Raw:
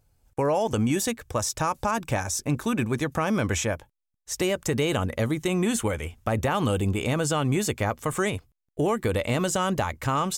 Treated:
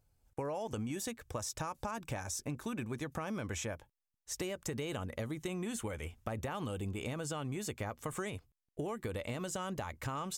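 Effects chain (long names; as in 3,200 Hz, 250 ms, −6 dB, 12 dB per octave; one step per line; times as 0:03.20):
downward compressor, threshold −27 dBFS, peak gain reduction 7.5 dB
level −8 dB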